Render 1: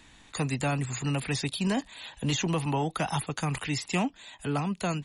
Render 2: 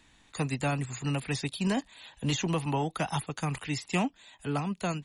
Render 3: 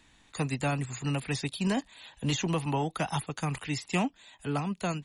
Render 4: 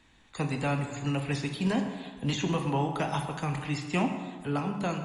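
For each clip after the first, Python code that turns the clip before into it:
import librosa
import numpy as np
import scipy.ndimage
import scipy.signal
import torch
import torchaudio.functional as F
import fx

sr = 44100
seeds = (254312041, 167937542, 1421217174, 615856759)

y1 = fx.upward_expand(x, sr, threshold_db=-37.0, expansion=1.5)
y2 = y1
y3 = fx.high_shelf(y2, sr, hz=5900.0, db=-9.5)
y3 = fx.rev_plate(y3, sr, seeds[0], rt60_s=1.5, hf_ratio=0.6, predelay_ms=0, drr_db=4.0)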